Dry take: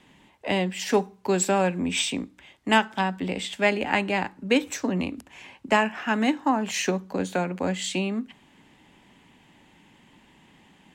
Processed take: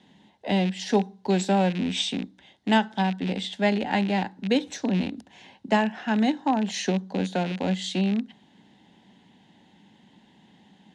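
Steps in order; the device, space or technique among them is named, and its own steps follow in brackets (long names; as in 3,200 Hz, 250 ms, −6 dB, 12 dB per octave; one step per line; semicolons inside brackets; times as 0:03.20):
car door speaker with a rattle (loose part that buzzes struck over −33 dBFS, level −21 dBFS; loudspeaker in its box 83–8,900 Hz, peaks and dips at 200 Hz +8 dB, 760 Hz +4 dB, 1,200 Hz −10 dB, 2,400 Hz −8 dB, 3,800 Hz +6 dB, 7,800 Hz −8 dB)
level −2 dB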